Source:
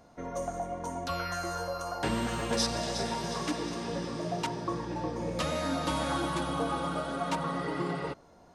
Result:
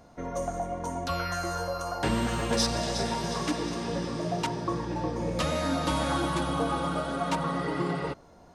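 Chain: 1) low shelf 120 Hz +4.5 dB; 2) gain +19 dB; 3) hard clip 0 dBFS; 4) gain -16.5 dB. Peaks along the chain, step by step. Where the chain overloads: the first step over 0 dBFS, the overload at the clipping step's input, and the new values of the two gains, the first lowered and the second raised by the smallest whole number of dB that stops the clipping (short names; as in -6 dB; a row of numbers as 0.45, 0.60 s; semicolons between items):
-16.0, +3.0, 0.0, -16.5 dBFS; step 2, 3.0 dB; step 2 +16 dB, step 4 -13.5 dB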